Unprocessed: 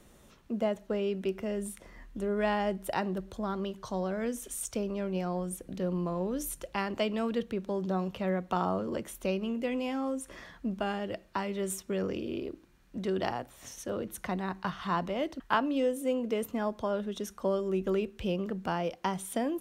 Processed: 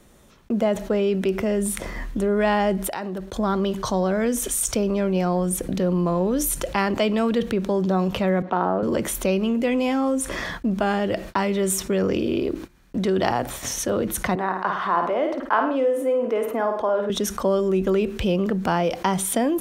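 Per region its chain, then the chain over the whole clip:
2.87–3.36 s: bass shelf 200 Hz -7.5 dB + compression 5:1, threshold -46 dBFS
8.42–8.83 s: high-pass 230 Hz + tape spacing loss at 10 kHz 35 dB + loudspeaker Doppler distortion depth 0.11 ms
14.35–17.10 s: three-band isolator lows -22 dB, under 310 Hz, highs -15 dB, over 2 kHz + flutter echo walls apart 9.1 m, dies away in 0.4 s
whole clip: gate -51 dBFS, range -38 dB; band-stop 2.8 kHz, Q 28; level flattener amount 50%; trim +7 dB

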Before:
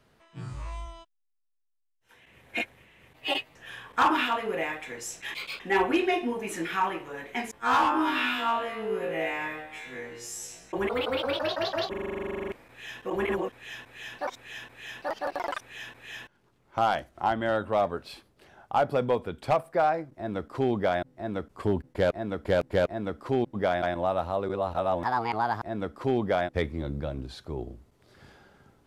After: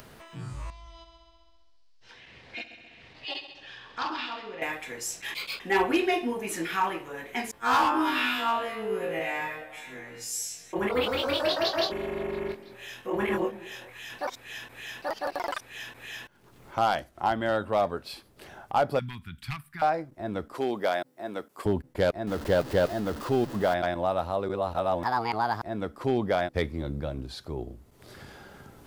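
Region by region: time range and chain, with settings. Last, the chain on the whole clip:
0.70–4.62 s: four-pole ladder low-pass 5.3 kHz, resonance 60% + multi-head delay 66 ms, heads first and second, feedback 49%, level -14 dB
9.19–14.10 s: doubling 24 ms -5 dB + repeats whose band climbs or falls 210 ms, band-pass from 240 Hz, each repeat 1.4 oct, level -10.5 dB + three bands expanded up and down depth 40%
18.99–19.82 s: Chebyshev band-stop 160–1800 Hz + dynamic bell 6.8 kHz, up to -6 dB, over -60 dBFS, Q 1
20.54–21.66 s: Bessel high-pass 340 Hz + treble shelf 8.1 kHz +8 dB
22.27–23.74 s: jump at every zero crossing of -34 dBFS + treble shelf 6.1 kHz -7.5 dB + band-stop 2.3 kHz, Q 9.2
whole clip: dynamic bell 4.7 kHz, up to +5 dB, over -56 dBFS, Q 3.1; upward compressor, threshold -38 dBFS; treble shelf 11 kHz +11 dB

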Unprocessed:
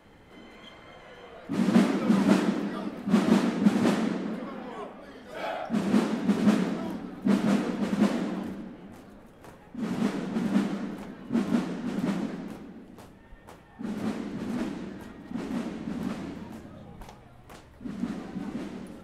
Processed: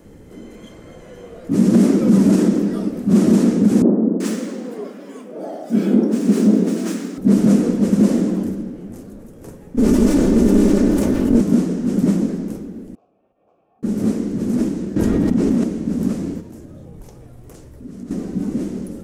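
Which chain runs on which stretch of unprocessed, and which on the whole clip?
3.82–7.18 s: median filter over 3 samples + high-pass 200 Hz 24 dB/octave + bands offset in time lows, highs 380 ms, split 1 kHz
9.77–11.41 s: comb filter that takes the minimum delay 3.4 ms + level flattener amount 70%
12.95–13.83 s: compression, threshold -48 dBFS + vowel filter a + distance through air 100 m
14.96–15.64 s: treble shelf 8.3 kHz -9 dB + level flattener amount 100%
16.40–18.11 s: peaking EQ 210 Hz -7 dB 0.25 oct + compression 2.5:1, threshold -47 dBFS
whole clip: high-order bell 1.7 kHz -13 dB 3 oct; loudness maximiser +16.5 dB; trim -3.5 dB

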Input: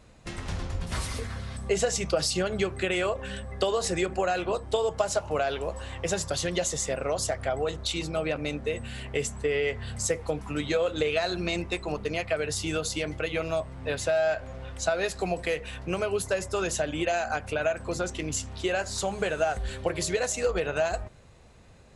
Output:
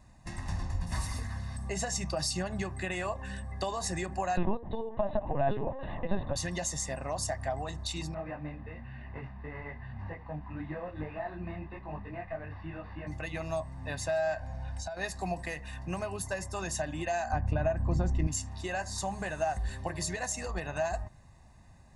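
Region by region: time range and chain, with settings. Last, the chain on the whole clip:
4.37–6.36 s: peaking EQ 430 Hz +14.5 dB 1.4 oct + compression, threshold -18 dBFS + LPC vocoder at 8 kHz pitch kept
8.14–13.07 s: one-bit delta coder 32 kbps, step -40 dBFS + low-pass 2.5 kHz 24 dB/octave + detune thickener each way 36 cents
14.40–14.97 s: low-pass 9.3 kHz + compression, threshold -33 dBFS + comb 1.3 ms, depth 54%
17.32–18.27 s: low-pass 8.3 kHz + tilt EQ -3.5 dB/octave
whole clip: peaking EQ 3.1 kHz -10.5 dB 0.5 oct; comb 1.1 ms, depth 76%; trim -5.5 dB

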